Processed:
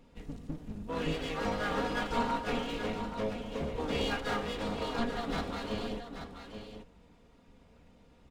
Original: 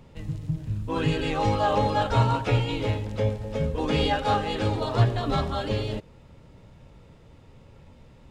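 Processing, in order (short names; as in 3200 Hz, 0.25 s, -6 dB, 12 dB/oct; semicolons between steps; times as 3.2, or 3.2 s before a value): minimum comb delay 4.2 ms; on a send: echo 0.831 s -9 dB; on the sum: gain -7 dB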